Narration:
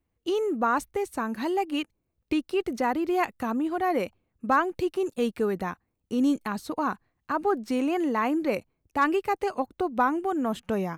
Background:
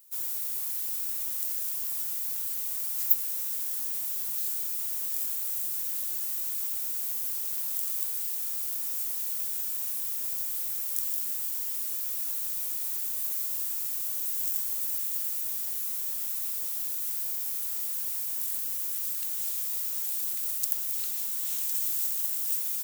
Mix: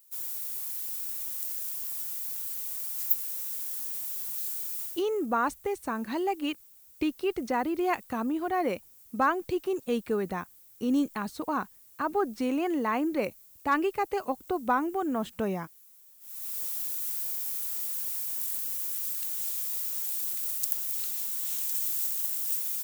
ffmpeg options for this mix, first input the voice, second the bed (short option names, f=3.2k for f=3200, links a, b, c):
-filter_complex "[0:a]adelay=4700,volume=-2.5dB[a];[1:a]volume=19.5dB,afade=t=out:st=4.82:d=0.21:silence=0.0944061,afade=t=in:st=16.2:d=0.41:silence=0.0749894[b];[a][b]amix=inputs=2:normalize=0"